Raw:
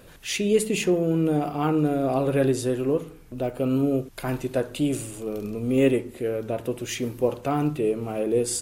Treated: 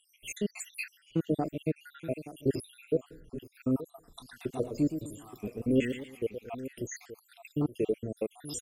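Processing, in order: random spectral dropouts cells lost 80%; outdoor echo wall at 150 m, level -14 dB; 4.05–6.5 warbling echo 0.117 s, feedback 38%, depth 135 cents, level -9 dB; gain -3 dB

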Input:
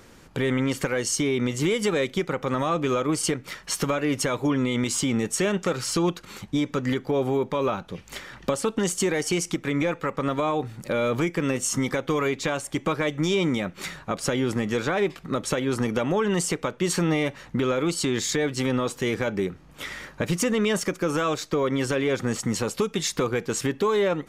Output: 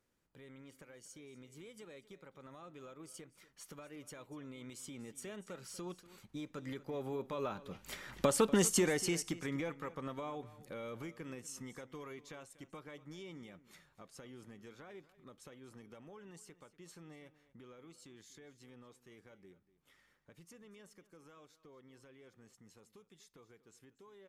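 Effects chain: Doppler pass-by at 8.47, 10 m/s, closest 3.5 m; bell 12000 Hz +6 dB 0.72 oct; echo 0.241 s -17.5 dB; gain -4 dB

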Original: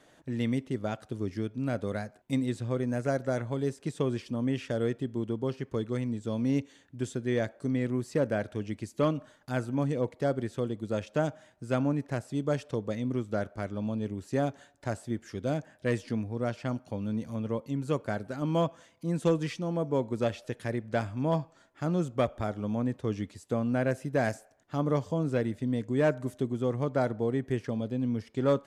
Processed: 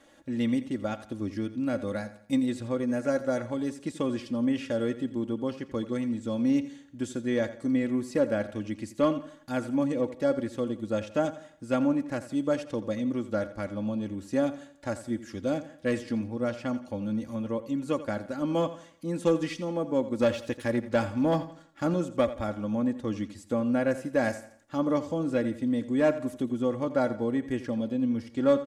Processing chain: comb 3.6 ms, depth 64%; 20.19–21.94 sample leveller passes 1; feedback echo 85 ms, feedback 39%, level -14.5 dB

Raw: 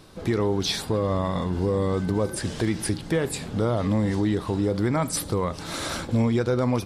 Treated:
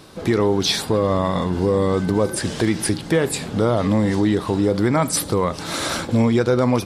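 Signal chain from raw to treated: low shelf 70 Hz -12 dB; gain +6.5 dB

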